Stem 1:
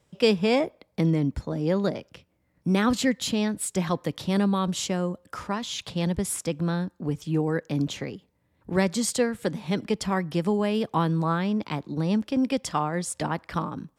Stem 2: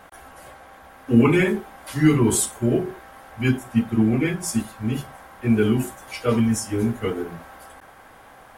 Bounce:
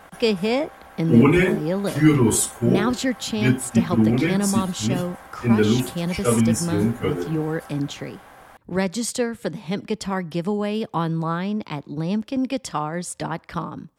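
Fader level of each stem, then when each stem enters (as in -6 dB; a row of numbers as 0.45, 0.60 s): +0.5, +1.0 dB; 0.00, 0.00 s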